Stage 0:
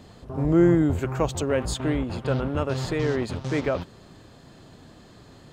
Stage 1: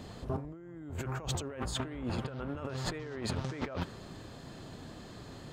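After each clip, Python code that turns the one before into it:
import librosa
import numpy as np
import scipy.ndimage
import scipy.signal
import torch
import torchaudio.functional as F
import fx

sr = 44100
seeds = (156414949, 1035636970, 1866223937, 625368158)

y = fx.dynamic_eq(x, sr, hz=1500.0, q=1.1, threshold_db=-44.0, ratio=4.0, max_db=4)
y = fx.over_compress(y, sr, threshold_db=-33.0, ratio=-1.0)
y = F.gain(torch.from_numpy(y), -6.0).numpy()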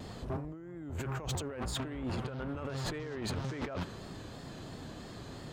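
y = fx.vibrato(x, sr, rate_hz=3.0, depth_cents=55.0)
y = 10.0 ** (-32.0 / 20.0) * np.tanh(y / 10.0 ** (-32.0 / 20.0))
y = F.gain(torch.from_numpy(y), 2.0).numpy()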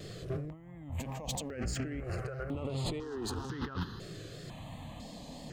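y = fx.phaser_held(x, sr, hz=2.0, low_hz=240.0, high_hz=5700.0)
y = F.gain(torch.from_numpy(y), 3.0).numpy()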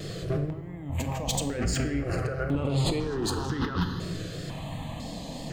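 y = fx.room_shoebox(x, sr, seeds[0], volume_m3=720.0, walls='mixed', distance_m=0.64)
y = F.gain(torch.from_numpy(y), 8.0).numpy()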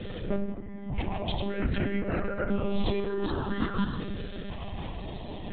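y = fx.lpc_monotone(x, sr, seeds[1], pitch_hz=200.0, order=16)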